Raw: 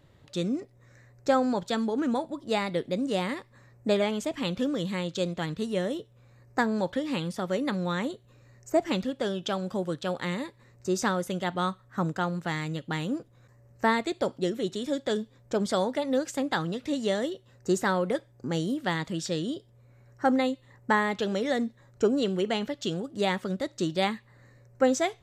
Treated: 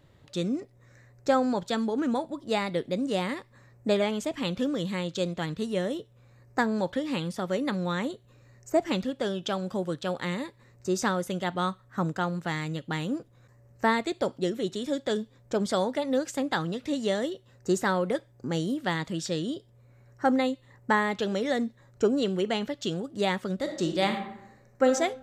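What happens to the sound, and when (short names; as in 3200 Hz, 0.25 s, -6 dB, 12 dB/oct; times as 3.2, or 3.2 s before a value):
23.55–24.86 reverb throw, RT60 0.8 s, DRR 4.5 dB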